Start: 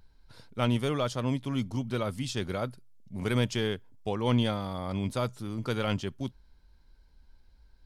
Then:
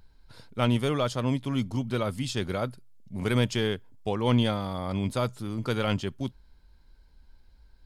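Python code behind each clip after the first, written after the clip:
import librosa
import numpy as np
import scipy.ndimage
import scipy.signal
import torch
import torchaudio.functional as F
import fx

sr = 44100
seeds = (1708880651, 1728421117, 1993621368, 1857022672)

y = fx.notch(x, sr, hz=5800.0, q=17.0)
y = F.gain(torch.from_numpy(y), 2.5).numpy()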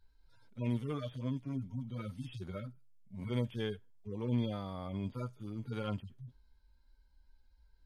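y = fx.hpss_only(x, sr, part='harmonic')
y = F.gain(torch.from_numpy(y), -9.0).numpy()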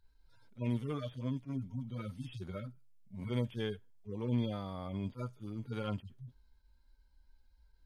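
y = fx.attack_slew(x, sr, db_per_s=350.0)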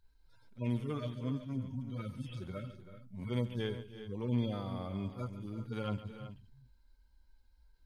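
y = fx.echo_multitap(x, sr, ms=(140, 327, 378), db=(-14.0, -15.5, -13.0))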